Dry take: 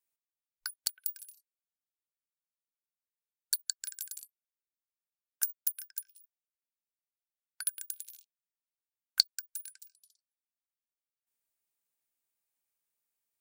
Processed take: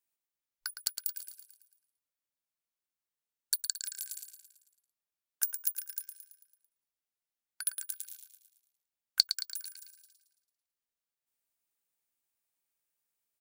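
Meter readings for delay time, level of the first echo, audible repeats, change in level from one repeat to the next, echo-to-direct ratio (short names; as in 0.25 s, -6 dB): 0.111 s, -9.0 dB, 5, -5.5 dB, -7.5 dB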